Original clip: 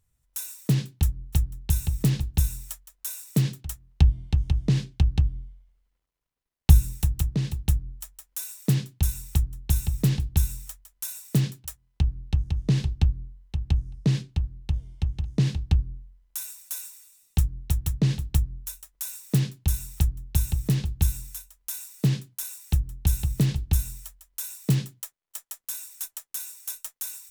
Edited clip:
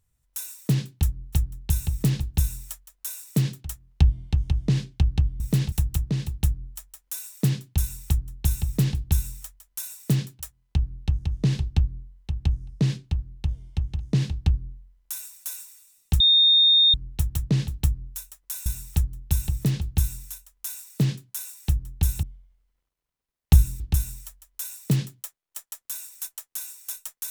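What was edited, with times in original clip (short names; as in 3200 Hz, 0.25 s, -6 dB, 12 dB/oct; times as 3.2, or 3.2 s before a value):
5.4–6.97 swap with 23.27–23.59
17.45 add tone 3670 Hz -13.5 dBFS 0.74 s
19.17–19.7 cut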